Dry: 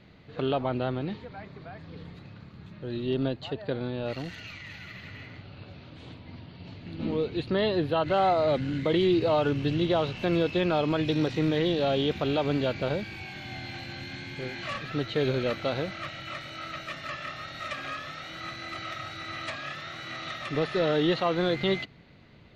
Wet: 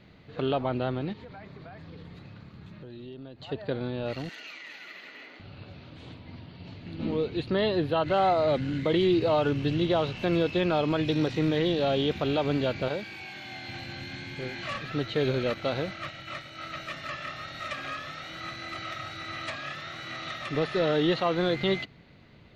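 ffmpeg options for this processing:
-filter_complex "[0:a]asplit=3[a][b][c];[a]afade=t=out:st=1.12:d=0.02[d];[b]acompressor=threshold=-40dB:ratio=6:attack=3.2:release=140:knee=1:detection=peak,afade=t=in:st=1.12:d=0.02,afade=t=out:st=3.48:d=0.02[e];[c]afade=t=in:st=3.48:d=0.02[f];[d][e][f]amix=inputs=3:normalize=0,asettb=1/sr,asplit=3[g][h][i];[g]atrim=end=4.294[j];[h]atrim=start=4.29:end=5.4,asetpts=PTS-STARTPTS,afade=t=in:d=0.004:c=qsin,afade=t=out:st=1.106:d=0.004:c=qsin,highpass=f=300:w=0.5412,highpass=f=300:w=1.3066[k];[i]atrim=start=5.396[l];[j][k]acrossfade=d=0.004:c1=hsin:c2=qsin[m];[m][l]acrossfade=d=0.004:c1=qsin:c2=hsin,asettb=1/sr,asplit=3[n][o][p];[n]atrim=end=12.884[q];[o]atrim=start=12.88:end=13.68,asetpts=PTS-STARTPTS,afade=t=in:d=0.004:c=qsin,afade=t=out:st=0.796:d=0.004:c=qsin,highpass=f=320:p=1[r];[p]atrim=start=13.676[s];[q][r]acrossfade=d=0.004:c1=hsin:c2=qsin[t];[t][s]acrossfade=d=0.004:c1=qsin:c2=hsin,asettb=1/sr,asplit=3[u][v][w];[u]atrim=end=15.544[x];[v]atrim=start=15.54:end=16.72,asetpts=PTS-STARTPTS,afade=t=in:d=0.004:c=qsin,afade=t=out:st=1.176:d=0.004:c=qsin,agate=range=-33dB:threshold=-38dB:ratio=3:release=100:detection=peak[y];[w]atrim=start=16.716[z];[x][y]acrossfade=d=0.004:c1=hsin:c2=qsin[aa];[aa][z]acrossfade=d=0.004:c1=qsin:c2=hsin"

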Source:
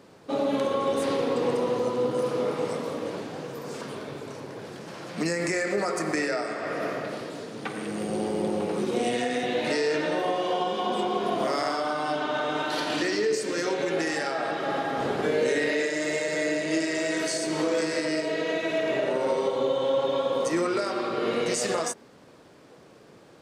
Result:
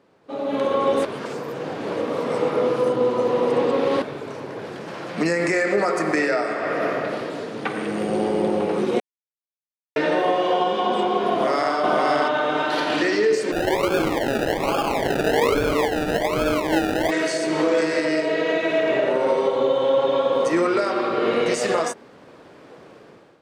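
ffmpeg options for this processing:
-filter_complex "[0:a]asplit=2[a][b];[b]afade=t=in:st=11.31:d=0.01,afade=t=out:st=11.76:d=0.01,aecho=0:1:520|1040|1560:0.794328|0.119149|0.0178724[c];[a][c]amix=inputs=2:normalize=0,asplit=3[d][e][f];[d]afade=t=out:st=13.51:d=0.02[g];[e]acrusher=samples=32:mix=1:aa=0.000001:lfo=1:lforange=19.2:lforate=1.2,afade=t=in:st=13.51:d=0.02,afade=t=out:st=17.1:d=0.02[h];[f]afade=t=in:st=17.1:d=0.02[i];[g][h][i]amix=inputs=3:normalize=0,asplit=5[j][k][l][m][n];[j]atrim=end=1.052[o];[k]atrim=start=1.048:end=4.022,asetpts=PTS-STARTPTS,areverse[p];[l]atrim=start=4.018:end=9,asetpts=PTS-STARTPTS,afade=t=out:st=4.978:d=0.004:c=hsin[q];[m]atrim=start=9:end=9.96,asetpts=PTS-STARTPTS,volume=0[r];[n]atrim=start=9.96,asetpts=PTS-STARTPTS,afade=t=in:d=0.004:c=hsin[s];[o][p]acrossfade=d=0.004:c1=hsin:c2=hsin[t];[q][r][s]concat=n=3:v=0:a=1[u];[t][u]acrossfade=d=0.004:c1=hsin:c2=hsin,bass=f=250:g=-4,treble=f=4k:g=-9,dynaudnorm=f=210:g=5:m=14dB,volume=-6dB"

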